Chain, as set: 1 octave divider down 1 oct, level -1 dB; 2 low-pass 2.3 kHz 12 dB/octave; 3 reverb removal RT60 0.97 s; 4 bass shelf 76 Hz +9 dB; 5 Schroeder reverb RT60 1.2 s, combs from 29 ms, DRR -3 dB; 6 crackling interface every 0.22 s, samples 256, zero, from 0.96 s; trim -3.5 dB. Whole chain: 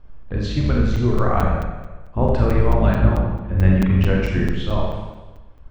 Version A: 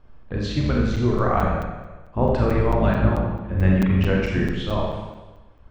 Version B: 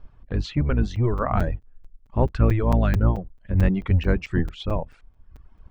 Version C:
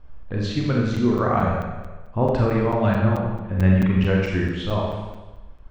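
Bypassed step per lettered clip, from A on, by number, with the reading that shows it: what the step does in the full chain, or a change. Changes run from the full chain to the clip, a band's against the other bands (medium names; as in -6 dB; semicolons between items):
4, 125 Hz band -3.0 dB; 5, momentary loudness spread change -4 LU; 1, 125 Hz band -3.0 dB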